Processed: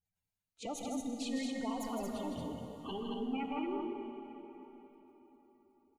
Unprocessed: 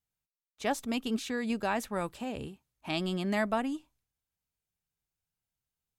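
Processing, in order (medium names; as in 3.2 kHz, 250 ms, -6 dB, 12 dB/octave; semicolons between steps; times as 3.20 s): pitch bend over the whole clip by +7.5 st starting unshifted; in parallel at -1 dB: compression 6:1, threshold -39 dBFS, peak gain reduction 13 dB; on the sum: touch-sensitive flanger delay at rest 10.8 ms, full sweep at -27 dBFS; saturation -35 dBFS, distortion -8 dB; spectral gate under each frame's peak -15 dB strong; on a send: loudspeakers at several distances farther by 55 m -6 dB, 78 m -4 dB; on the sum: plate-style reverb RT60 4.2 s, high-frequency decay 0.75×, DRR 5 dB; trim -1 dB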